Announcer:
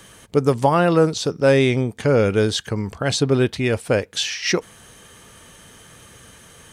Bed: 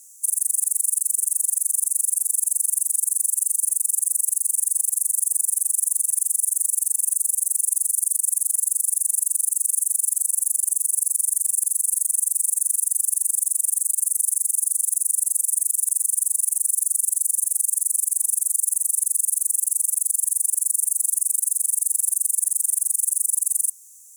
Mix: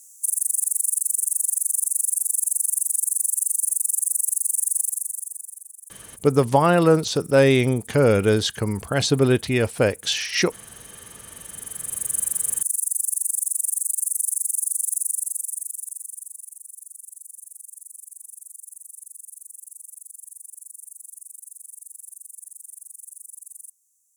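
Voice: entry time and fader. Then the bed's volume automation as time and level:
5.90 s, −0.5 dB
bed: 0:04.81 −1 dB
0:05.76 −22.5 dB
0:11.26 −22.5 dB
0:12.15 −2.5 dB
0:15.01 −2.5 dB
0:16.60 −20 dB

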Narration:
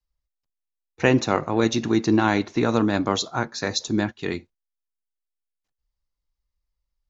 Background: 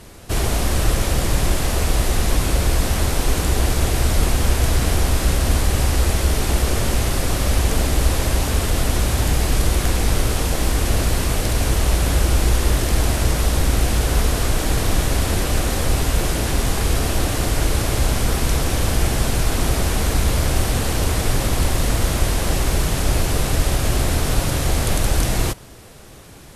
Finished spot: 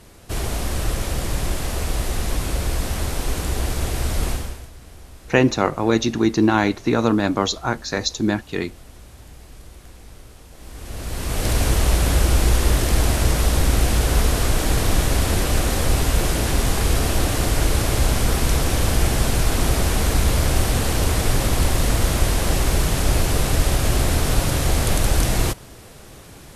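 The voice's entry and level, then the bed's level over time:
4.30 s, +2.5 dB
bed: 0:04.32 −5 dB
0:04.71 −24.5 dB
0:10.50 −24.5 dB
0:11.49 0 dB

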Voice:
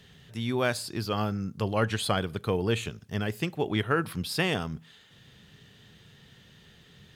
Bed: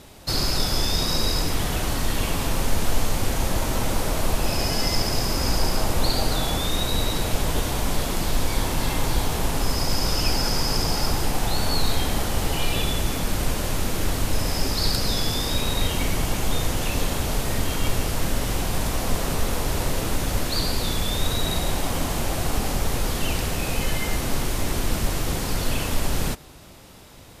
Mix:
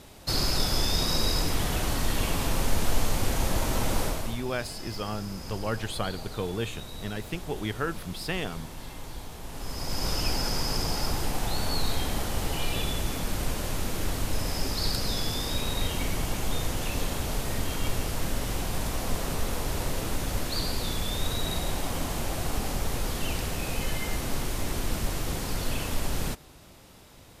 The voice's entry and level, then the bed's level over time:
3.90 s, −4.5 dB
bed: 0:04.04 −3 dB
0:04.45 −17 dB
0:09.42 −17 dB
0:10.07 −5.5 dB

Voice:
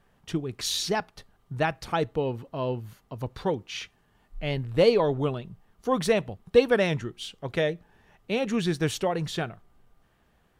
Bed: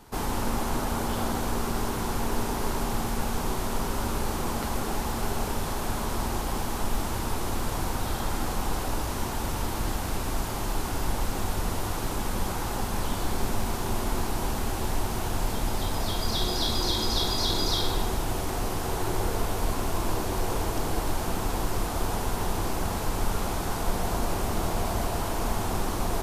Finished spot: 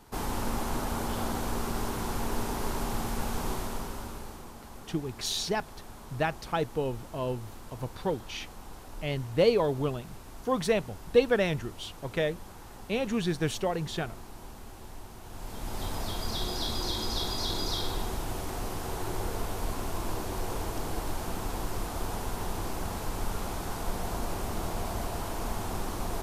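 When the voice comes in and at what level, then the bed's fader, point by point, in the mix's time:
4.60 s, −3.0 dB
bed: 0:03.53 −3.5 dB
0:04.53 −17 dB
0:15.22 −17 dB
0:15.84 −5.5 dB

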